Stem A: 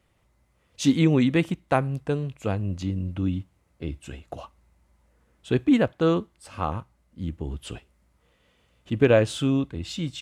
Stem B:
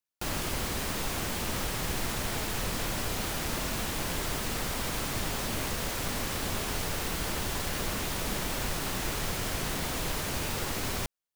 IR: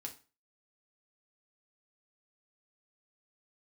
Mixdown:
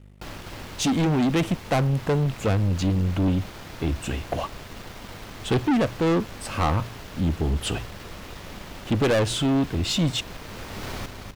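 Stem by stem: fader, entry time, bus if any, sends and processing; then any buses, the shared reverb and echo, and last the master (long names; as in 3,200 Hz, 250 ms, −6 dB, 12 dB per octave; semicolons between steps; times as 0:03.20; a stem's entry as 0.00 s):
+1.0 dB, 0.00 s, no send, no echo send, hard clipping −21 dBFS, distortion −8 dB; hum removal 58.45 Hz, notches 2; speech leveller within 3 dB 0.5 s
−8.0 dB, 0.00 s, no send, echo send −6.5 dB, running median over 5 samples; mains hum 50 Hz, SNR 11 dB; automatic ducking −17 dB, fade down 1.35 s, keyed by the first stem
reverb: not used
echo: repeating echo 250 ms, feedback 39%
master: leveller curve on the samples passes 2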